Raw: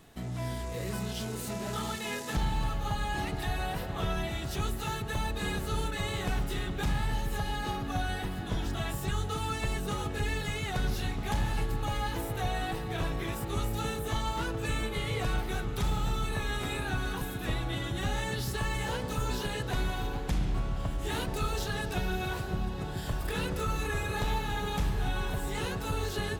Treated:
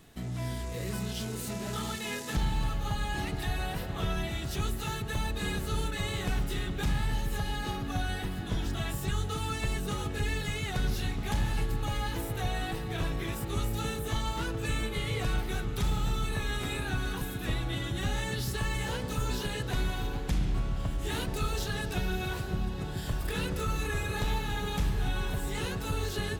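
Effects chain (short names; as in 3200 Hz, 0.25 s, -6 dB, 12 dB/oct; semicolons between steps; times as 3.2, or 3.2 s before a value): bell 800 Hz -4 dB 1.7 oct; gain +1 dB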